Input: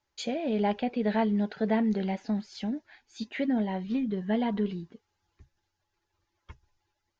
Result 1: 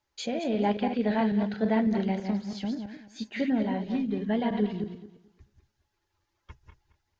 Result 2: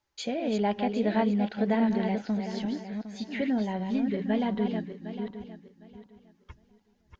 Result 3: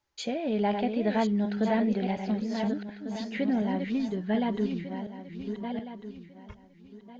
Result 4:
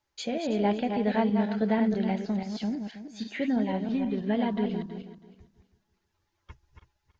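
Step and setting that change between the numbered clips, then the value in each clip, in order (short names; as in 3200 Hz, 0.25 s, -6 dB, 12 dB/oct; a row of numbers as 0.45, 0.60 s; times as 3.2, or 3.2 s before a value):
regenerating reverse delay, time: 0.11, 0.379, 0.724, 0.162 s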